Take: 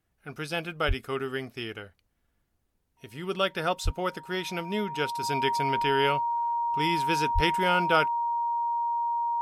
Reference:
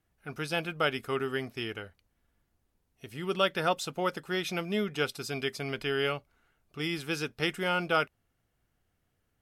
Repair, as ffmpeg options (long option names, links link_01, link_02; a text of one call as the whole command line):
ffmpeg -i in.wav -filter_complex "[0:a]bandreject=frequency=940:width=30,asplit=3[link_01][link_02][link_03];[link_01]afade=type=out:start_time=0.87:duration=0.02[link_04];[link_02]highpass=frequency=140:width=0.5412,highpass=frequency=140:width=1.3066,afade=type=in:start_time=0.87:duration=0.02,afade=type=out:start_time=0.99:duration=0.02[link_05];[link_03]afade=type=in:start_time=0.99:duration=0.02[link_06];[link_04][link_05][link_06]amix=inputs=3:normalize=0,asplit=3[link_07][link_08][link_09];[link_07]afade=type=out:start_time=3.84:duration=0.02[link_10];[link_08]highpass=frequency=140:width=0.5412,highpass=frequency=140:width=1.3066,afade=type=in:start_time=3.84:duration=0.02,afade=type=out:start_time=3.96:duration=0.02[link_11];[link_09]afade=type=in:start_time=3.96:duration=0.02[link_12];[link_10][link_11][link_12]amix=inputs=3:normalize=0,asplit=3[link_13][link_14][link_15];[link_13]afade=type=out:start_time=7.34:duration=0.02[link_16];[link_14]highpass=frequency=140:width=0.5412,highpass=frequency=140:width=1.3066,afade=type=in:start_time=7.34:duration=0.02,afade=type=out:start_time=7.46:duration=0.02[link_17];[link_15]afade=type=in:start_time=7.46:duration=0.02[link_18];[link_16][link_17][link_18]amix=inputs=3:normalize=0,asetnsamples=nb_out_samples=441:pad=0,asendcmd='5.23 volume volume -3.5dB',volume=0dB" out.wav